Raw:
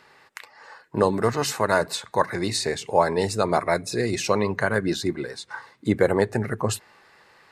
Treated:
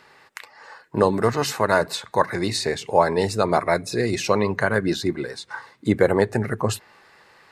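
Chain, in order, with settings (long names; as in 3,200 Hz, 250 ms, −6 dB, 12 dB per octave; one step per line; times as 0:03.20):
dynamic equaliser 8,200 Hz, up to −4 dB, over −42 dBFS, Q 1.1
level +2 dB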